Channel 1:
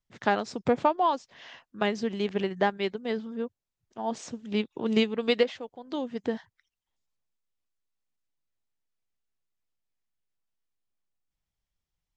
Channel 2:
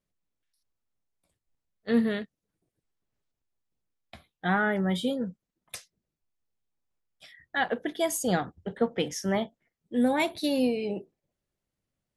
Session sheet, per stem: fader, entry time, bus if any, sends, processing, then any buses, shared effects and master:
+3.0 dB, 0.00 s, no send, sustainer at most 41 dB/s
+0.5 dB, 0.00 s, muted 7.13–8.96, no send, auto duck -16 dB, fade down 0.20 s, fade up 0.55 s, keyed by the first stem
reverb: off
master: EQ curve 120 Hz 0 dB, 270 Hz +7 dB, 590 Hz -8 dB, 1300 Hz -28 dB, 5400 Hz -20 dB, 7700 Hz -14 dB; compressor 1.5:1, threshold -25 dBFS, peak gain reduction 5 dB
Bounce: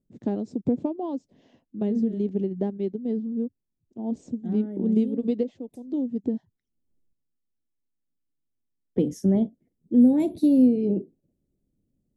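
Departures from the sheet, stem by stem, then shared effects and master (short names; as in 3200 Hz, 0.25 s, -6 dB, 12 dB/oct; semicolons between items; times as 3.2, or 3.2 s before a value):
stem 1: missing sustainer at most 41 dB/s; stem 2 +0.5 dB -> +9.5 dB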